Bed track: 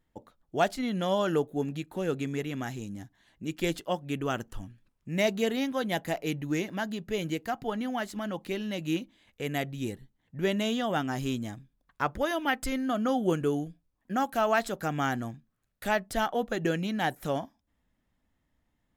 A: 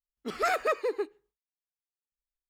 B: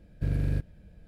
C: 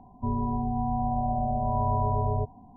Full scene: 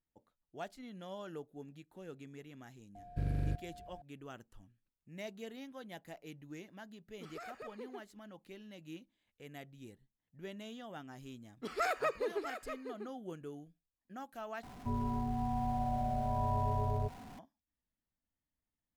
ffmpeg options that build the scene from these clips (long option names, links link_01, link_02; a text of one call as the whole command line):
ffmpeg -i bed.wav -i cue0.wav -i cue1.wav -i cue2.wav -filter_complex "[1:a]asplit=2[link_01][link_02];[0:a]volume=-18.5dB[link_03];[2:a]aeval=exprs='val(0)+0.00631*sin(2*PI*710*n/s)':channel_layout=same[link_04];[link_01]acompressor=threshold=-28dB:ratio=6:attack=3.2:release=140:knee=1:detection=peak[link_05];[link_02]aecho=1:1:645:0.316[link_06];[3:a]aeval=exprs='val(0)+0.5*0.00944*sgn(val(0))':channel_layout=same[link_07];[link_03]asplit=2[link_08][link_09];[link_08]atrim=end=14.634[link_10];[link_07]atrim=end=2.76,asetpts=PTS-STARTPTS,volume=-8dB[link_11];[link_09]atrim=start=17.386[link_12];[link_04]atrim=end=1.07,asetpts=PTS-STARTPTS,volume=-7dB,afade=type=in:duration=0.004:curve=hsin,afade=type=out:start_time=1.066:duration=0.004:curve=hsin,adelay=2950[link_13];[link_05]atrim=end=2.49,asetpts=PTS-STARTPTS,volume=-15.5dB,afade=type=in:duration=0.004:curve=hsin,afade=type=out:start_time=2.486:duration=0.004:curve=hsin,adelay=6950[link_14];[link_06]atrim=end=2.49,asetpts=PTS-STARTPTS,volume=-6.5dB,afade=type=in:duration=0.004:curve=hsin,afade=type=out:start_time=2.486:duration=0.004:curve=hsin,adelay=11370[link_15];[link_10][link_11]acrossfade=duration=0.004:curve1=hsin:curve2=hsin[link_16];[link_16][link_12]acrossfade=duration=0.004:curve1=hsin:curve2=hsin[link_17];[link_17][link_13][link_14][link_15]amix=inputs=4:normalize=0" out.wav